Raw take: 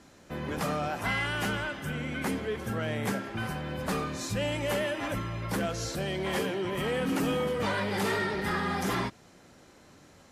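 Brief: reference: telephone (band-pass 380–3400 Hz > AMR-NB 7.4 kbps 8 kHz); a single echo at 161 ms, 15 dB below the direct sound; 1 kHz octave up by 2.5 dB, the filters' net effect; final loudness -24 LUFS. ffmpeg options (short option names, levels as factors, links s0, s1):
-af "highpass=380,lowpass=3400,equalizer=f=1000:t=o:g=3.5,aecho=1:1:161:0.178,volume=3.16" -ar 8000 -c:a libopencore_amrnb -b:a 7400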